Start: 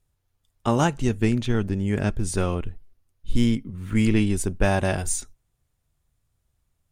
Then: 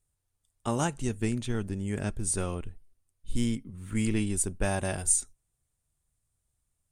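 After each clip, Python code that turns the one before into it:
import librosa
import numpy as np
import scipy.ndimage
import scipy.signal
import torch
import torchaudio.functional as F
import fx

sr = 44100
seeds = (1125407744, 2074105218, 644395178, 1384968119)

y = fx.peak_eq(x, sr, hz=8800.0, db=13.0, octaves=0.69)
y = y * librosa.db_to_amplitude(-8.0)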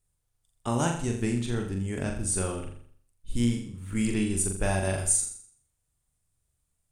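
y = fx.room_flutter(x, sr, wall_m=7.2, rt60_s=0.55)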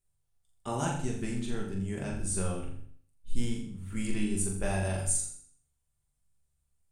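y = fx.room_shoebox(x, sr, seeds[0], volume_m3=180.0, walls='furnished', distance_m=1.2)
y = y * librosa.db_to_amplitude(-6.5)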